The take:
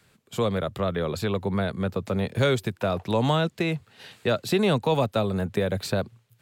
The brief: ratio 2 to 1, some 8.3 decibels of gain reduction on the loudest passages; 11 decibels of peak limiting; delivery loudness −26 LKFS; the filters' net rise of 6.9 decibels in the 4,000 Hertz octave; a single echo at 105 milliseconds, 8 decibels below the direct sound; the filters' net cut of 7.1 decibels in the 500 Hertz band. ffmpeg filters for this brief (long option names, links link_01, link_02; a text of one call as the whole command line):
ffmpeg -i in.wav -af "equalizer=frequency=500:width_type=o:gain=-9,equalizer=frequency=4000:width_type=o:gain=8,acompressor=threshold=-35dB:ratio=2,alimiter=level_in=3.5dB:limit=-24dB:level=0:latency=1,volume=-3.5dB,aecho=1:1:105:0.398,volume=11dB" out.wav